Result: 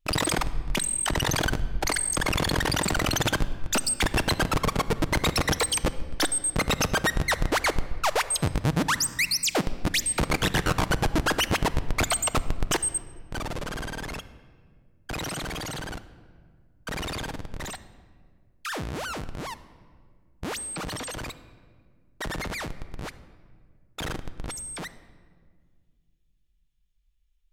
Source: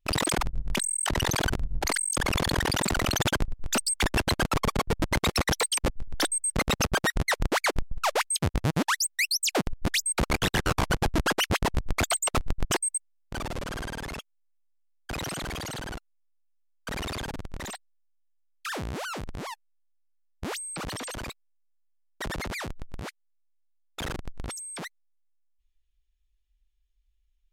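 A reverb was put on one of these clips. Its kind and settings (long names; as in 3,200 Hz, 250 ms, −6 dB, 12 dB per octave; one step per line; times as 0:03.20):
rectangular room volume 2,700 cubic metres, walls mixed, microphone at 0.51 metres
level +1 dB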